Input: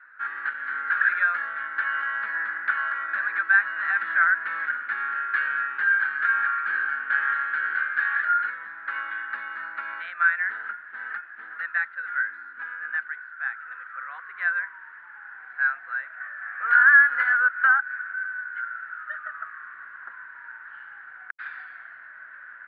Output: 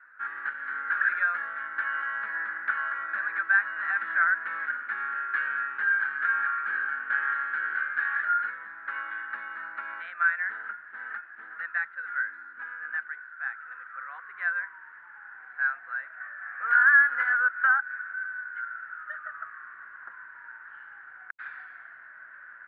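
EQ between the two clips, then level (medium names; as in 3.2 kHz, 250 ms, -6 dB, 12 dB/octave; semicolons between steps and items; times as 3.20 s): low-pass 2 kHz 6 dB/octave; -1.5 dB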